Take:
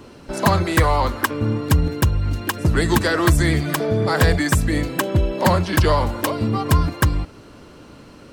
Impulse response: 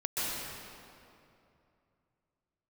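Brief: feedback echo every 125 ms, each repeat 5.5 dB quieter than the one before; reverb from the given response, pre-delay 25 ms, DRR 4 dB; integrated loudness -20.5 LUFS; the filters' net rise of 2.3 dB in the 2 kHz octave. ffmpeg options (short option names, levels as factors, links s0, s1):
-filter_complex "[0:a]equalizer=f=2000:t=o:g=3,aecho=1:1:125|250|375|500|625|750|875:0.531|0.281|0.149|0.079|0.0419|0.0222|0.0118,asplit=2[s0][s1];[1:a]atrim=start_sample=2205,adelay=25[s2];[s1][s2]afir=irnorm=-1:irlink=0,volume=0.266[s3];[s0][s3]amix=inputs=2:normalize=0,volume=0.596"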